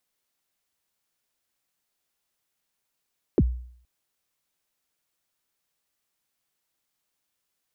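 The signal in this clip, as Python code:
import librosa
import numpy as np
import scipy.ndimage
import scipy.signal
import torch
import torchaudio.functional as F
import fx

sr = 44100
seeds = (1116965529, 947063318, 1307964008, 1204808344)

y = fx.drum_kick(sr, seeds[0], length_s=0.47, level_db=-13, start_hz=470.0, end_hz=61.0, sweep_ms=45.0, decay_s=0.59, click=False)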